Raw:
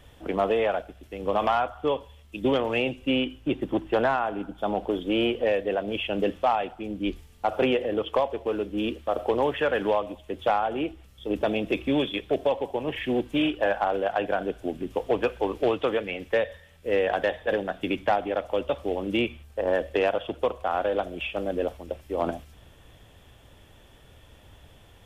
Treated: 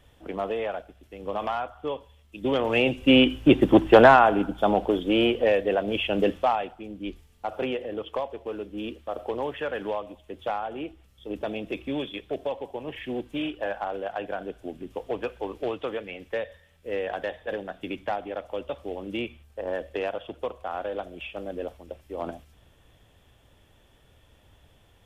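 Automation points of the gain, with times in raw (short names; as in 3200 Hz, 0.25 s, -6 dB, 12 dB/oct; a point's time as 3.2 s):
2.36 s -5.5 dB
2.64 s +1.5 dB
3.33 s +10 dB
4.18 s +10 dB
5.01 s +2.5 dB
6.29 s +2.5 dB
6.92 s -6 dB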